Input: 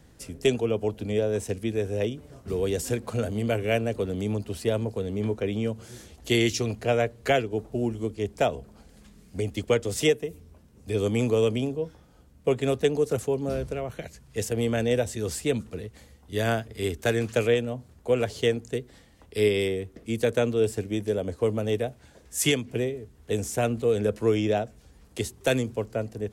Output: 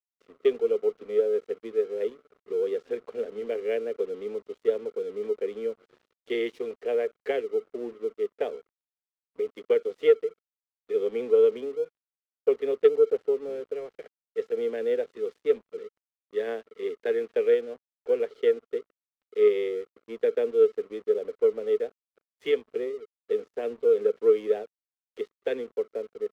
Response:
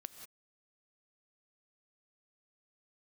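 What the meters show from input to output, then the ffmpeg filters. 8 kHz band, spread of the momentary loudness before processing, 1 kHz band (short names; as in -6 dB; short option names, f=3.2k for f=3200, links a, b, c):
under -25 dB, 10 LU, -10.0 dB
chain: -af "highpass=f=300:w=0.5412,highpass=f=300:w=1.3066,equalizer=f=310:t=q:w=4:g=-9,equalizer=f=440:t=q:w=4:g=10,equalizer=f=660:t=q:w=4:g=-9,equalizer=f=940:t=q:w=4:g=-8,equalizer=f=1.4k:t=q:w=4:g=-10,equalizer=f=2.6k:t=q:w=4:g=-9,lowpass=f=2.8k:w=0.5412,lowpass=f=2.8k:w=1.3066,aeval=exprs='0.473*(cos(1*acos(clip(val(0)/0.473,-1,1)))-cos(1*PI/2))+0.0299*(cos(3*acos(clip(val(0)/0.473,-1,1)))-cos(3*PI/2))':c=same,aeval=exprs='sgn(val(0))*max(abs(val(0))-0.00316,0)':c=same,volume=-1.5dB"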